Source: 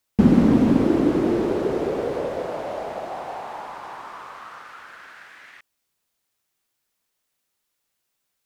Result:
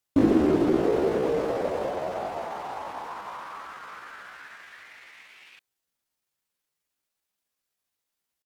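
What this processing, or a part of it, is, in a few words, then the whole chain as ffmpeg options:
chipmunk voice: -filter_complex "[0:a]asettb=1/sr,asplit=3[a][b][c];[a]atrim=end=0.804[d];[b]atrim=start=0.8:end=1.9,asetpts=PTS-STARTPTS,afade=t=in:d=0.004:c=qsin,afade=t=out:st=1.096:d=0.004:c=qsin,asplit=2[e][f];[f]adelay=32,volume=-8dB[g];[e][g]amix=inputs=2:normalize=0,atrim=end_sample=48510[h];[c]atrim=start=1.896[i];[d][h]acrossfade=d=0.004:c1=hsin:c2=qsin[j];[j][i]acrossfade=d=0.004:c1=qsin:c2=hsin,asetrate=58866,aresample=44100,atempo=0.749154,volume=-5dB"

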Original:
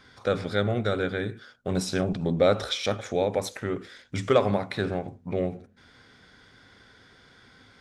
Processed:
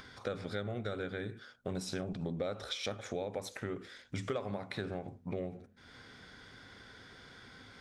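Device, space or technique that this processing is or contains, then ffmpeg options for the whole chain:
upward and downward compression: -af "acompressor=mode=upward:threshold=-42dB:ratio=2.5,acompressor=threshold=-30dB:ratio=5,volume=-4.5dB"

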